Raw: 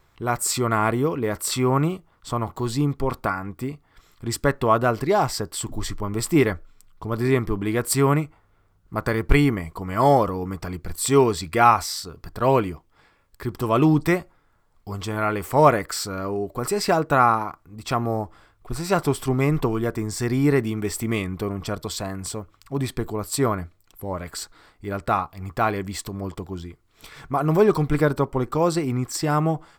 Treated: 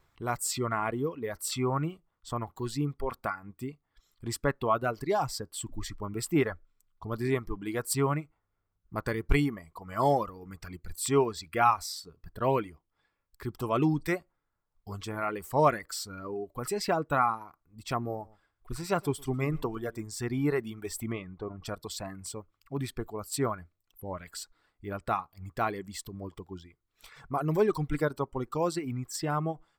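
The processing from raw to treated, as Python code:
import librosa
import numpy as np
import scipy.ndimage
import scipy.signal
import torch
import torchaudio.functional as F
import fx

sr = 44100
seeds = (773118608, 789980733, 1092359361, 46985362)

y = fx.echo_single(x, sr, ms=115, db=-15.0, at=(18.13, 20.02))
y = fx.spacing_loss(y, sr, db_at_10k=22, at=(21.12, 21.63))
y = fx.dereverb_blind(y, sr, rt60_s=1.8)
y = y * librosa.db_to_amplitude(-7.5)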